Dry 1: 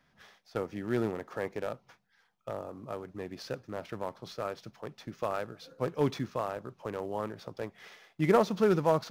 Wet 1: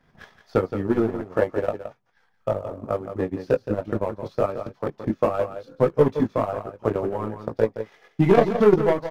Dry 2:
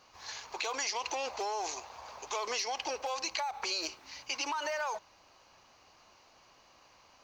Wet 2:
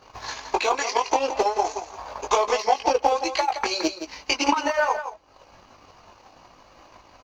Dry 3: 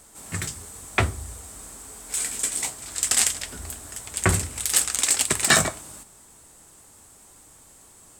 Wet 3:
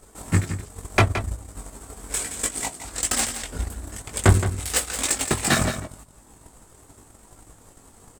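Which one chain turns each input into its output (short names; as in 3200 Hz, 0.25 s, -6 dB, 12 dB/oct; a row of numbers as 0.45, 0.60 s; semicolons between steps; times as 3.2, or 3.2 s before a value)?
tilt shelf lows +5 dB, about 1500 Hz; soft clip -19 dBFS; chorus voices 4, 0.27 Hz, delay 20 ms, depth 2.3 ms; transient shaper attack +10 dB, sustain -10 dB; on a send: echo 0.17 s -10 dB; on the sum: match loudness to -24 LUFS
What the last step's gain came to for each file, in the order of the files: +7.0, +11.5, +3.5 dB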